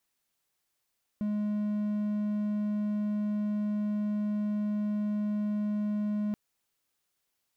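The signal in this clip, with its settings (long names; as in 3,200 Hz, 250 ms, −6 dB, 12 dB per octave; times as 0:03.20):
tone triangle 209 Hz −25.5 dBFS 5.13 s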